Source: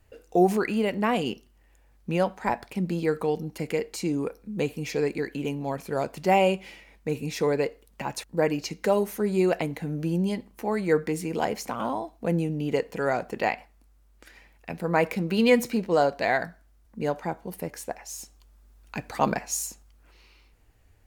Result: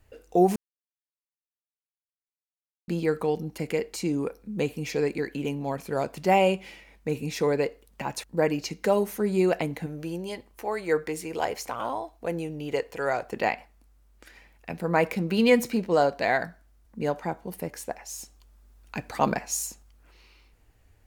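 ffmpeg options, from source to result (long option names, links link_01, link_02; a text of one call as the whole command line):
ffmpeg -i in.wav -filter_complex "[0:a]asettb=1/sr,asplit=3[link_01][link_02][link_03];[link_01]atrim=end=9.864[link_04];[link_02]atrim=start=9.86:end=13.33,asetpts=PTS-STARTPTS,afade=type=in:duration=0.004:curve=qsin,afade=type=out:start_time=3.466:duration=0.004:curve=qsin,equalizer=frequency=200:width=1.5:gain=-13.5[link_05];[link_03]atrim=start=13.326[link_06];[link_04][link_05]acrossfade=duration=0.004:curve1=hsin:curve2=qsin[link_07];[link_07][link_06]acrossfade=duration=0.004:curve1=qsin:curve2=hsin,asplit=3[link_08][link_09][link_10];[link_08]atrim=end=0.56,asetpts=PTS-STARTPTS,afade=type=out:start_time=0.556:duration=0.004:curve=hsin[link_11];[link_09]atrim=start=0.56:end=2.88,asetpts=PTS-STARTPTS,volume=0[link_12];[link_10]atrim=start=2.88,asetpts=PTS-STARTPTS,afade=type=in:duration=0.004:curve=hsin[link_13];[link_11][link_12][link_13]concat=n=3:v=0:a=1" out.wav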